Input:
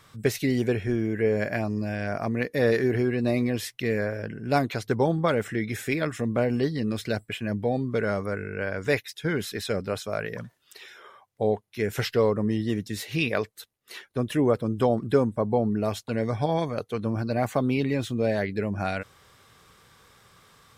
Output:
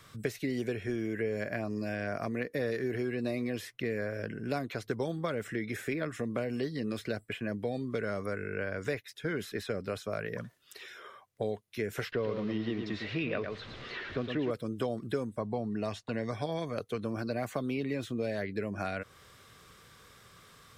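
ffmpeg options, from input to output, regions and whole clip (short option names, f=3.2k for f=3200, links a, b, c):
-filter_complex "[0:a]asettb=1/sr,asplit=3[a][b][c];[a]atrim=end=12.124[d];[b]atrim=start=12.12:end=14.51,asetpts=PTS-STARTPTS,afade=t=in:d=0.004:c=qsin,afade=t=out:st=2.386:d=0.004:c=qsin,aeval=exprs='val(0)+0.5*0.0168*sgn(val(0))':c=same,lowpass=f=4.2k:w=0.5412,lowpass=f=4.2k:w=1.3066,aecho=1:1:109:0.422,atrim=end_sample=105399[e];[c]atrim=start=14.506[f];[d][e]acrossfade=d=0.004:c1=hsin:c2=qsin[g];[g][f]acrossfade=d=0.004:c1=qsin:c2=hsin,asettb=1/sr,asplit=3[h][i][j];[h]atrim=end=15.394[k];[i]atrim=start=15.39:end=16.32,asetpts=PTS-STARTPTS,afade=t=in:d=0.004:c=qsin,afade=t=out:st=0.926:d=0.004:c=qsin,lowpass=7.2k,aecho=1:1:1.1:0.32,atrim=end_sample=41013[l];[j]atrim=start=16.316[m];[k][l]acrossfade=d=0.004:c1=hsin:c2=qsin[n];[n][m]acrossfade=d=0.004:c1=qsin:c2=hsin,equalizer=f=850:t=o:w=0.29:g=-7.5,acrossover=split=250|2100[o][p][q];[o]acompressor=threshold=-42dB:ratio=4[r];[p]acompressor=threshold=-33dB:ratio=4[s];[q]acompressor=threshold=-48dB:ratio=4[t];[r][s][t]amix=inputs=3:normalize=0"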